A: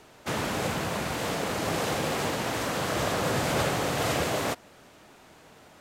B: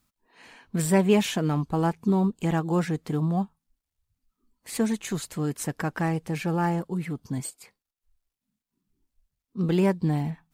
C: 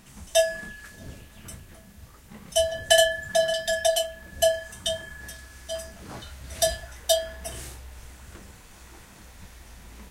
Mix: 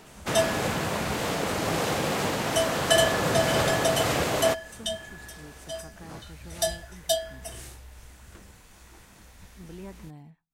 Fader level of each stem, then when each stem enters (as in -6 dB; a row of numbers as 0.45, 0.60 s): +1.5, -20.0, -3.5 dB; 0.00, 0.00, 0.00 s